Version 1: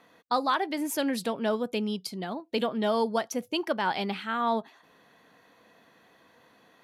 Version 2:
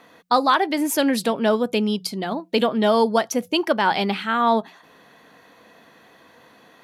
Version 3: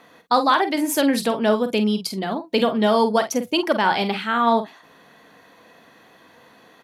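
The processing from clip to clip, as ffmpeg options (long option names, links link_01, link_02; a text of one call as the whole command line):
ffmpeg -i in.wav -af "bandreject=frequency=60:width_type=h:width=6,bandreject=frequency=120:width_type=h:width=6,bandreject=frequency=180:width_type=h:width=6,volume=8.5dB" out.wav
ffmpeg -i in.wav -filter_complex "[0:a]asplit=2[link_01][link_02];[link_02]adelay=47,volume=-9.5dB[link_03];[link_01][link_03]amix=inputs=2:normalize=0" out.wav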